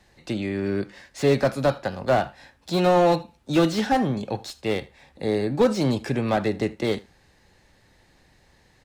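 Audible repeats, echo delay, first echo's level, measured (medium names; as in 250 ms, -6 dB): 1, 78 ms, -22.0 dB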